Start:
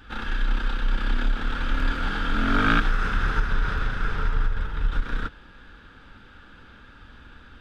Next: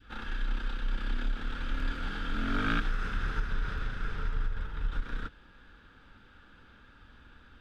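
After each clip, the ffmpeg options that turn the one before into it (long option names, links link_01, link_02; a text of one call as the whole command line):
ffmpeg -i in.wav -af "adynamicequalizer=threshold=0.01:dfrequency=920:dqfactor=1:tfrequency=920:tqfactor=1:attack=5:release=100:ratio=0.375:range=2:mode=cutabove:tftype=bell,volume=-8dB" out.wav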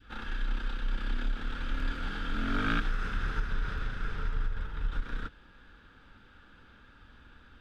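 ffmpeg -i in.wav -af anull out.wav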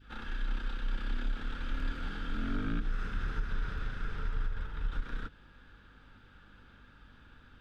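ffmpeg -i in.wav -filter_complex "[0:a]acrossover=split=450[link_01][link_02];[link_02]acompressor=threshold=-40dB:ratio=6[link_03];[link_01][link_03]amix=inputs=2:normalize=0,aeval=exprs='val(0)+0.00112*(sin(2*PI*50*n/s)+sin(2*PI*2*50*n/s)/2+sin(2*PI*3*50*n/s)/3+sin(2*PI*4*50*n/s)/4+sin(2*PI*5*50*n/s)/5)':channel_layout=same,volume=-2dB" out.wav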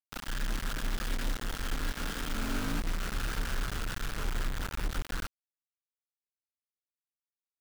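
ffmpeg -i in.wav -af "acrusher=bits=5:mix=0:aa=0.000001" out.wav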